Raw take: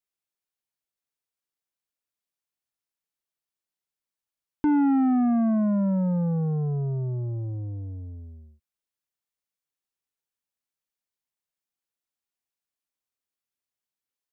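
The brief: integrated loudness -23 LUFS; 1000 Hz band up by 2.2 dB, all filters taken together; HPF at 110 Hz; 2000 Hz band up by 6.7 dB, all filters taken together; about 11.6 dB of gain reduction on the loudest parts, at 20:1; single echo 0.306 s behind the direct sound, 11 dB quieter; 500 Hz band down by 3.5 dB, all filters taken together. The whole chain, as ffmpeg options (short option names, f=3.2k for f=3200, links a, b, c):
-af "highpass=110,equalizer=f=500:t=o:g=-7,equalizer=f=1k:t=o:g=4.5,equalizer=f=2k:t=o:g=8,acompressor=threshold=-32dB:ratio=20,aecho=1:1:306:0.282,volume=13dB"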